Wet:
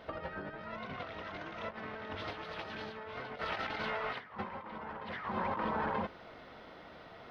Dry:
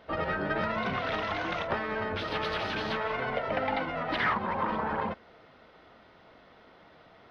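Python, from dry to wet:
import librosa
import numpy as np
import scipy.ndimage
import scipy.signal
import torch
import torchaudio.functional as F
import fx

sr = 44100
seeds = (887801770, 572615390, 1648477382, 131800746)

y = fx.highpass(x, sr, hz=1100.0, slope=12, at=(3.41, 4.19))
y = y + 10.0 ** (-5.0 / 20.0) * np.pad(y, (int(930 * sr / 1000.0), 0))[:len(y)]
y = fx.over_compress(y, sr, threshold_db=-36.0, ratio=-0.5)
y = F.gain(torch.from_numpy(y), -3.0).numpy()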